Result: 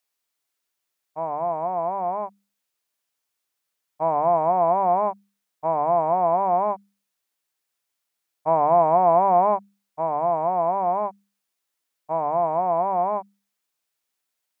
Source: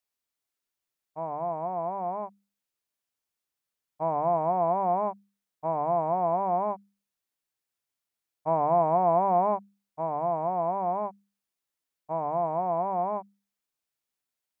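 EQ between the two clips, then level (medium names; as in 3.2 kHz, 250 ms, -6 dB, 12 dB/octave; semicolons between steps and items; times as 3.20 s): bass shelf 300 Hz -8 dB; +7.0 dB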